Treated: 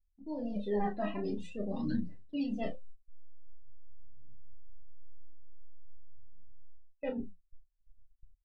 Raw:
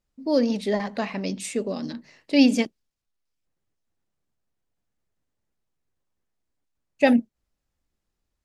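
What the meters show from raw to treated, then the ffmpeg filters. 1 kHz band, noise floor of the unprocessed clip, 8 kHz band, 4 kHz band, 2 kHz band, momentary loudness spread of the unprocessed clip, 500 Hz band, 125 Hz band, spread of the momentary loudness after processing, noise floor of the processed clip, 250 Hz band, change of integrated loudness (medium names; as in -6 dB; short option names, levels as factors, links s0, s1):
-9.0 dB, -82 dBFS, under -30 dB, -21.5 dB, -18.5 dB, 12 LU, -12.5 dB, no reading, 8 LU, -75 dBFS, -13.5 dB, -13.5 dB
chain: -filter_complex "[0:a]dynaudnorm=f=370:g=11:m=3.76,equalizer=f=3500:t=o:w=0.38:g=4,flanger=delay=3.3:depth=8.9:regen=72:speed=1.7:shape=triangular,areverse,acompressor=threshold=0.0178:ratio=8,areverse,asuperstop=centerf=2200:order=8:qfactor=6.3,aphaser=in_gain=1:out_gain=1:delay=3.2:decay=0.75:speed=0.47:type=triangular,aemphasis=mode=reproduction:type=riaa,asplit=2[s0][s1];[s1]adelay=29,volume=0.447[s2];[s0][s2]amix=inputs=2:normalize=0,asplit=2[s3][s4];[s4]aecho=0:1:10|39:0.501|0.299[s5];[s3][s5]amix=inputs=2:normalize=0,afftdn=nr=14:nf=-45,agate=range=0.126:threshold=0.00562:ratio=16:detection=peak,volume=0.631"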